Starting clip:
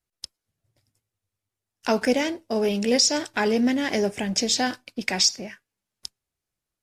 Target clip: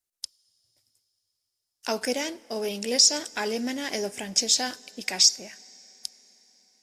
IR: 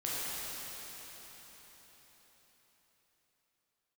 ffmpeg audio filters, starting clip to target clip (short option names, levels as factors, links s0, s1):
-filter_complex "[0:a]bass=f=250:g=-7,treble=f=4000:g=10,asplit=2[s0][s1];[1:a]atrim=start_sample=2205[s2];[s1][s2]afir=irnorm=-1:irlink=0,volume=0.0376[s3];[s0][s3]amix=inputs=2:normalize=0,volume=0.501"